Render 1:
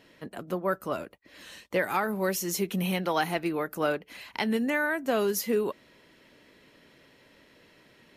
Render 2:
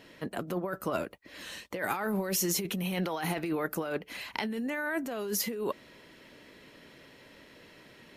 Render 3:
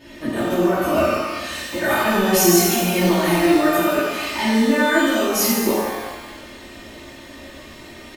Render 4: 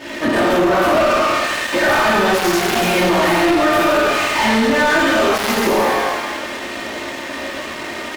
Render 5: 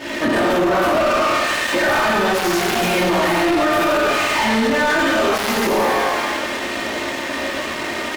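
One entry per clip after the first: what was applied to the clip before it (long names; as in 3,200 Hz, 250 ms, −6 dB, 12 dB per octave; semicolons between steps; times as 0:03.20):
compressor whose output falls as the input rises −32 dBFS, ratio −1
low-shelf EQ 230 Hz +7 dB; comb filter 3.3 ms, depth 79%; reverb with rising layers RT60 1.2 s, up +12 semitones, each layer −8 dB, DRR −10.5 dB
gap after every zero crossing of 0.12 ms; downward compressor, threshold −17 dBFS, peak gain reduction 7.5 dB; mid-hump overdrive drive 23 dB, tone 2,800 Hz, clips at −8 dBFS; level +1.5 dB
brickwall limiter −14 dBFS, peak gain reduction 7 dB; level +2.5 dB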